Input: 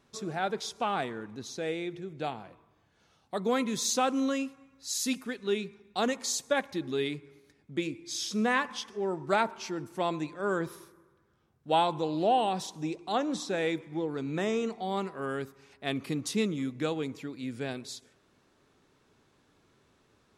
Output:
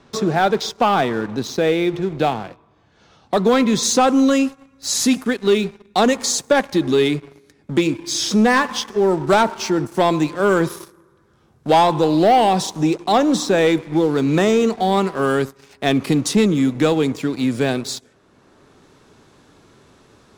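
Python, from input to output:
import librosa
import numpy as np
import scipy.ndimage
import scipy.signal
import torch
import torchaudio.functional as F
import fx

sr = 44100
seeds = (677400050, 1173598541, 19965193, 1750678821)

y = fx.lowpass(x, sr, hz=fx.steps((0.0, 5300.0), (3.83, 12000.0)), slope=12)
y = fx.leveller(y, sr, passes=2)
y = fx.peak_eq(y, sr, hz=2400.0, db=-3.0, octaves=1.4)
y = fx.band_squash(y, sr, depth_pct=40)
y = F.gain(torch.from_numpy(y), 8.0).numpy()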